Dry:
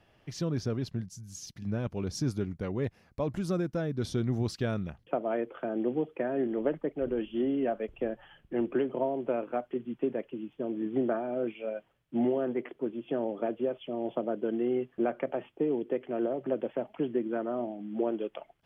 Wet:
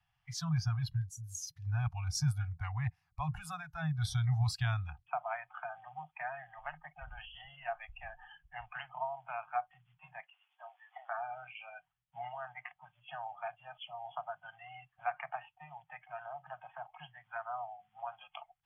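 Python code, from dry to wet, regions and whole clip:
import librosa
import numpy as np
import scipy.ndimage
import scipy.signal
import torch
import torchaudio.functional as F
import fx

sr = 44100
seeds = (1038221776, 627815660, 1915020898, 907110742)

y = fx.chain(x, sr, fx.brickwall_highpass(low_hz=380.0),
    fx.band_squash(depth_pct=40), at=(10.19, 11.18))
y = scipy.signal.sosfilt(scipy.signal.cheby1(5, 1.0, [160.0, 730.0], 'bandstop', fs=sr, output='sos'), y)
y = fx.noise_reduce_blind(y, sr, reduce_db=16)
y = y * librosa.db_to_amplitude(3.0)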